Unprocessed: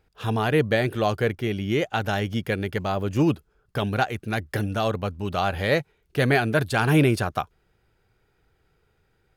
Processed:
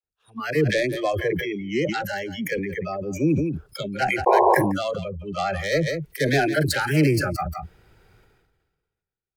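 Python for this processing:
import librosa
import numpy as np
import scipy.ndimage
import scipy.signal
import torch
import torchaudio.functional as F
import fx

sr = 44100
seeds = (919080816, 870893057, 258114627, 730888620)

y = fx.self_delay(x, sr, depth_ms=0.11)
y = fx.noise_reduce_blind(y, sr, reduce_db=29)
y = fx.dispersion(y, sr, late='lows', ms=43.0, hz=540.0)
y = fx.spec_paint(y, sr, seeds[0], shape='noise', start_s=4.26, length_s=0.29, low_hz=350.0, high_hz=1100.0, level_db=-16.0)
y = y + 10.0 ** (-22.0 / 20.0) * np.pad(y, (int(172 * sr / 1000.0), 0))[:len(y)]
y = fx.sustainer(y, sr, db_per_s=39.0)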